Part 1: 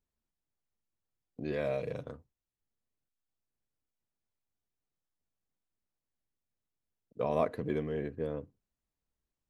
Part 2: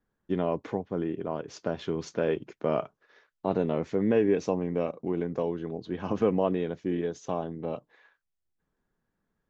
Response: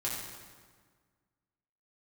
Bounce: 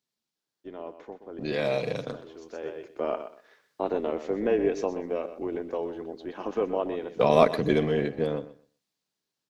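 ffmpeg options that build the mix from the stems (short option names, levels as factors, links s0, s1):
-filter_complex "[0:a]highpass=f=130:w=0.5412,highpass=f=130:w=1.3066,equalizer=f=4400:w=0.93:g=11,volume=1.33,asplit=3[s0][s1][s2];[s1]volume=0.168[s3];[1:a]highpass=f=270:w=0.5412,highpass=f=270:w=1.3066,adelay=350,volume=0.316,asplit=2[s4][s5];[s5]volume=0.266[s6];[s2]apad=whole_len=434350[s7];[s4][s7]sidechaincompress=threshold=0.00355:ratio=8:attack=50:release=877[s8];[s3][s6]amix=inputs=2:normalize=0,aecho=0:1:125|250|375:1|0.18|0.0324[s9];[s0][s8][s9]amix=inputs=3:normalize=0,dynaudnorm=f=250:g=17:m=3.76,tremolo=f=250:d=0.333"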